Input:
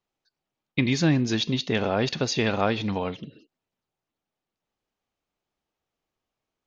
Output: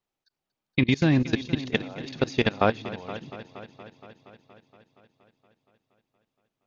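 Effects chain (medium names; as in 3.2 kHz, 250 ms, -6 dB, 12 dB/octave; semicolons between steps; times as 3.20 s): 1.58–2.13 s: high-pass 81 Hz -> 270 Hz; level held to a coarse grid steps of 23 dB; multi-head delay 235 ms, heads first and second, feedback 61%, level -18 dB; trim +4 dB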